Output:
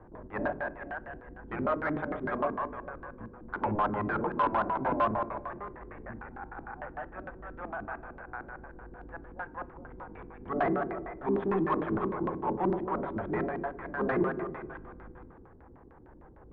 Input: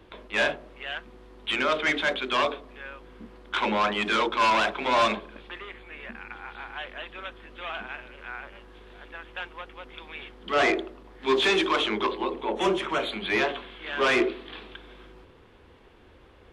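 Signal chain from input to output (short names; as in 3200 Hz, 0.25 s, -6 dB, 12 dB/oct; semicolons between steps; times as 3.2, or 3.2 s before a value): octaver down 1 oct, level 0 dB; EQ curve 390 Hz 0 dB, 800 Hz +7 dB, 2800 Hz -17 dB; thinning echo 0.212 s, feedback 44%, high-pass 470 Hz, level -5.5 dB; LFO low-pass square 6.6 Hz 300–1700 Hz; in parallel at -2 dB: compressor, threshold -31 dBFS, peak gain reduction 16.5 dB; on the sum: air absorption 170 m; on a send at -17 dB: reverb RT60 0.55 s, pre-delay 3 ms; on the sum: soft clip -9 dBFS, distortion -23 dB; gain -8 dB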